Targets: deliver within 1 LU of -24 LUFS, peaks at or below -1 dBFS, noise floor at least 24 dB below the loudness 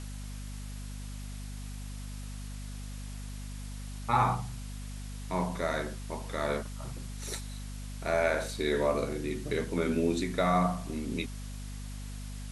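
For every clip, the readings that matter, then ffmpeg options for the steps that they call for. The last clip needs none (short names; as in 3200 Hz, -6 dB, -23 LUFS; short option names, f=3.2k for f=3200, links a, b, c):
hum 50 Hz; harmonics up to 250 Hz; hum level -38 dBFS; noise floor -40 dBFS; noise floor target -58 dBFS; loudness -34.0 LUFS; peak -12.0 dBFS; loudness target -24.0 LUFS
-> -af "bandreject=f=50:t=h:w=6,bandreject=f=100:t=h:w=6,bandreject=f=150:t=h:w=6,bandreject=f=200:t=h:w=6,bandreject=f=250:t=h:w=6"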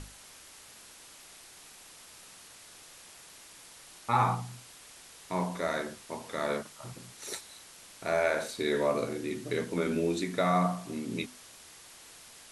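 hum none; noise floor -53 dBFS; noise floor target -56 dBFS
-> -af "afftdn=nr=6:nf=-53"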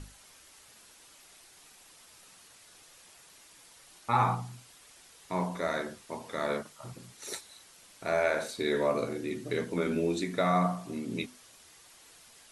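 noise floor -57 dBFS; loudness -32.0 LUFS; peak -12.5 dBFS; loudness target -24.0 LUFS
-> -af "volume=8dB"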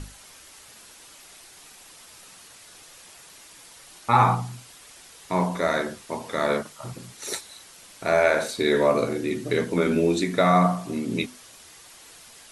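loudness -24.0 LUFS; peak -4.5 dBFS; noise floor -49 dBFS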